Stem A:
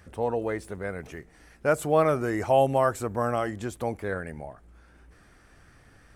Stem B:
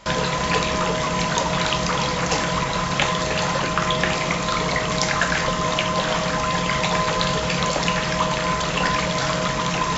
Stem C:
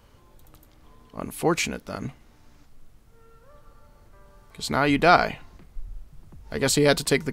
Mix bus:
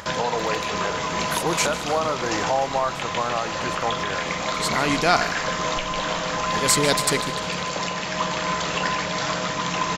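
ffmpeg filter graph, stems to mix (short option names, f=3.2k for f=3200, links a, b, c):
-filter_complex "[0:a]equalizer=f=1k:w=0.79:g=14.5,volume=-1dB[a];[1:a]lowshelf=f=110:g=-12,volume=-1.5dB,asplit=2[b][c];[c]volume=-9.5dB[d];[2:a]equalizer=f=8.3k:t=o:w=2.3:g=9.5,volume=-3.5dB,asplit=2[e][f];[f]volume=-15.5dB[g];[a][b]amix=inputs=2:normalize=0,acompressor=mode=upward:threshold=-33dB:ratio=2.5,alimiter=limit=-13dB:level=0:latency=1:release=486,volume=0dB[h];[d][g]amix=inputs=2:normalize=0,aecho=0:1:150|300|450|600|750|900|1050:1|0.5|0.25|0.125|0.0625|0.0312|0.0156[i];[e][h][i]amix=inputs=3:normalize=0"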